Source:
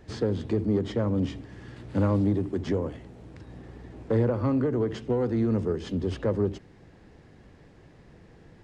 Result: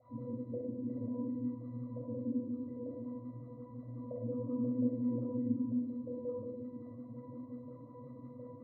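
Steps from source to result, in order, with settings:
linear delta modulator 32 kbit/s, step −36.5 dBFS
brickwall limiter −19 dBFS, peak gain reduction 6 dB
tilt shelving filter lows +9.5 dB, about 740 Hz
pitch vibrato 8.3 Hz 24 cents
high-shelf EQ 2,400 Hz +11 dB
mains-hum notches 50/100/150/200/250/300/350/400/450 Hz
downward compressor 6 to 1, threshold −27 dBFS, peak gain reduction 11.5 dB
LFO wah 5.6 Hz 220–1,200 Hz, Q 12
resonances in every octave B, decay 0.26 s
convolution reverb RT60 0.85 s, pre-delay 18 ms, DRR −2.5 dB
level +11 dB

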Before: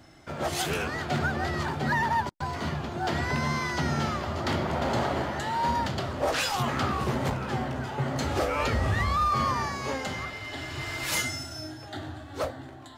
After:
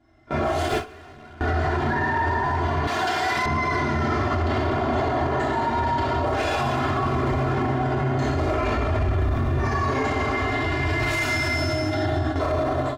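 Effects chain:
0:08.93–0:09.60: running median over 41 samples
dense smooth reverb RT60 2.1 s, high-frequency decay 0.9×, DRR −7.5 dB
0:00.68–0:01.41: hard clipping −29 dBFS, distortion −15 dB
low-pass filter 1,400 Hz 6 dB per octave
comb filter 2.9 ms, depth 92%
speech leveller within 3 dB 2 s
noise gate with hold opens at −19 dBFS
0:02.87–0:03.46: spectral tilt +4.5 dB per octave
brickwall limiter −21.5 dBFS, peak gain reduction 14.5 dB
level +6 dB

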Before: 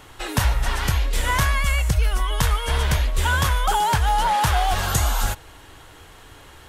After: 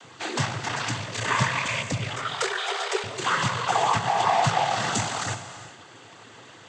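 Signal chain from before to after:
asymmetric clip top −22 dBFS
cochlear-implant simulation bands 16
0:02.16–0:03.04: frequency shifter +280 Hz
convolution reverb, pre-delay 3 ms, DRR 9.5 dB

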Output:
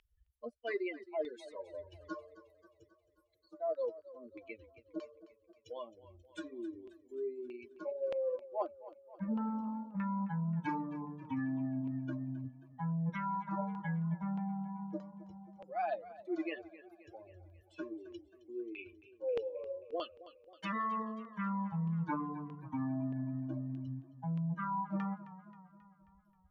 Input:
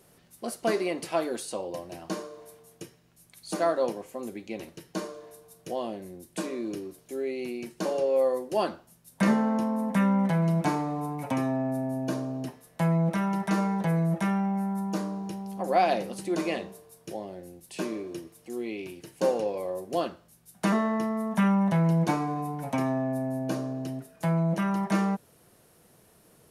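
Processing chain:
spectral dynamics exaggerated over time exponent 3
in parallel at −2 dB: upward compression, threshold −32 dBFS
on the sum: auto-filter low-pass saw down 1.6 Hz 500–2,800 Hz
reversed playback
downward compressor 16 to 1, threshold −31 dBFS, peak gain reduction 19 dB
reversed playback
dynamic equaliser 4,500 Hz, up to +4 dB, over −59 dBFS, Q 1.2
feedback echo with a swinging delay time 267 ms, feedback 57%, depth 78 cents, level −16.5 dB
level −2 dB

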